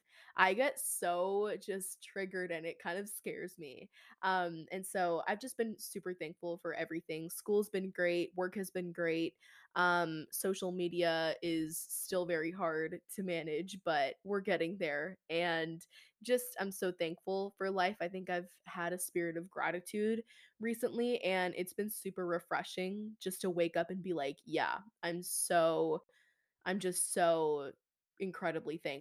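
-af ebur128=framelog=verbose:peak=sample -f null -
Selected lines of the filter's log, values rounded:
Integrated loudness:
  I:         -36.9 LUFS
  Threshold: -47.1 LUFS
Loudness range:
  LRA:         3.6 LU
  Threshold: -57.4 LUFS
  LRA low:   -39.1 LUFS
  LRA high:  -35.5 LUFS
Sample peak:
  Peak:      -12.4 dBFS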